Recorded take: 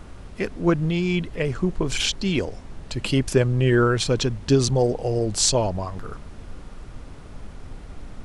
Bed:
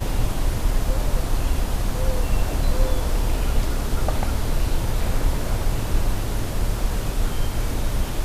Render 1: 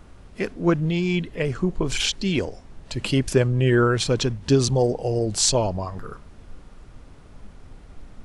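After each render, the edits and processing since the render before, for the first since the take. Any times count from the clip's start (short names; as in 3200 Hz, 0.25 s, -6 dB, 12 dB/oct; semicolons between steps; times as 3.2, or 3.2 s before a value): noise print and reduce 6 dB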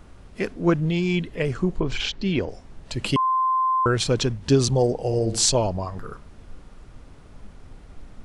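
1.8–2.49 air absorption 160 m; 3.16–3.86 bleep 1040 Hz -18 dBFS; 5.01–5.46 flutter echo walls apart 12 m, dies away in 0.43 s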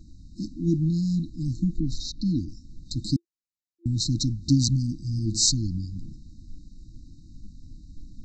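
steep low-pass 7700 Hz 72 dB/oct; FFT band-reject 340–3700 Hz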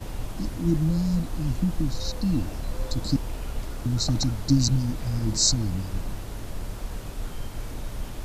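add bed -10.5 dB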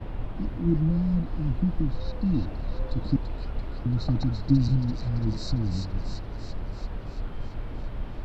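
air absorption 420 m; thin delay 0.338 s, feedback 65%, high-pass 3300 Hz, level -3.5 dB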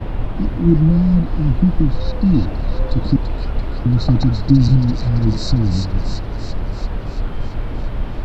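gain +11 dB; limiter -2 dBFS, peak gain reduction 3 dB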